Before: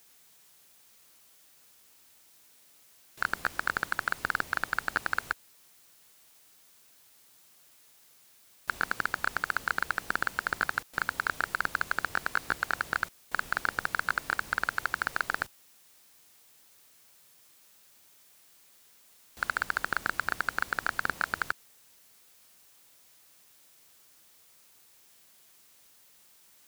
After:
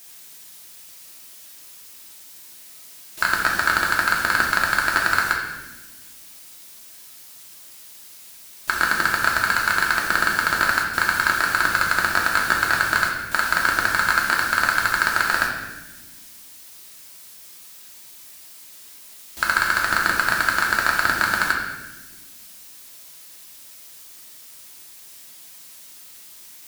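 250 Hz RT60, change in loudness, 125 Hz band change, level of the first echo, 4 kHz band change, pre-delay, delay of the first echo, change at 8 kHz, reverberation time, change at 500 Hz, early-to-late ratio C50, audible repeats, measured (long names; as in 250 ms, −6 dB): 2.2 s, +12.0 dB, +11.5 dB, no echo audible, +15.5 dB, 3 ms, no echo audible, +16.0 dB, 1.2 s, +11.0 dB, 3.5 dB, no echo audible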